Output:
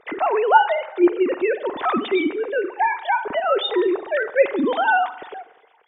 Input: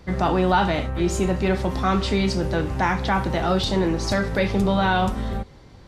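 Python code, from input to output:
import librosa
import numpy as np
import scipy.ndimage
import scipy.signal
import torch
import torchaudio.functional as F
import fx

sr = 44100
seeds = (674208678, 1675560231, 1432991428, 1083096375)

y = fx.sine_speech(x, sr)
y = fx.rev_spring(y, sr, rt60_s=1.0, pass_ms=(45,), chirp_ms=30, drr_db=15.0)
y = F.gain(torch.from_numpy(y), 1.0).numpy()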